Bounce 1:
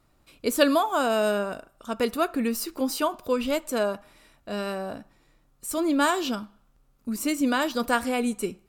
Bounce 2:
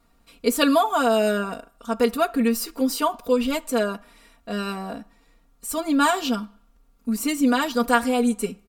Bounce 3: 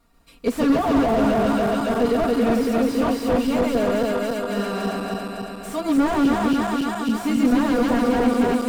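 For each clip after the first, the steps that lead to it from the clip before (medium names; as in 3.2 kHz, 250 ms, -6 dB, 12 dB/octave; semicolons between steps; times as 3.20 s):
comb 4.3 ms, depth 97%
backward echo that repeats 139 ms, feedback 80%, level -1 dB; slew-rate limiter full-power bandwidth 78 Hz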